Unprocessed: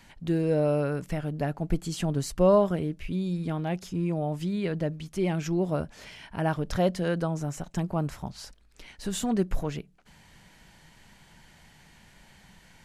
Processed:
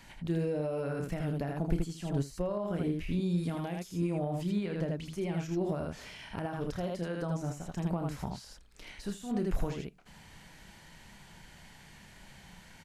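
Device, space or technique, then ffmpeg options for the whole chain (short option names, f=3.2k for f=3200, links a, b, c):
de-esser from a sidechain: -filter_complex "[0:a]asettb=1/sr,asplit=3[a][b][c];[a]atrim=end=3.384[d];[b]atrim=start=3.38:end=4.11,asetpts=PTS-STARTPTS,afade=t=in:d=0.004:c=qsin,afade=t=out:st=0.726:d=0.004:c=qsin,highshelf=f=5.2k:g=11.5[e];[c]atrim=start=4.106[f];[d][e]acrossfade=d=0.004:c1=hsin:c2=qsin[g];[g][f]acrossfade=d=0.004:c1=qsin:c2=hsin,aecho=1:1:29|79:0.376|0.531,asplit=2[h][i];[i]highpass=f=6.2k:p=1,apad=whole_len=569758[j];[h][j]sidechaincompress=threshold=-50dB:ratio=12:attack=3.5:release=97"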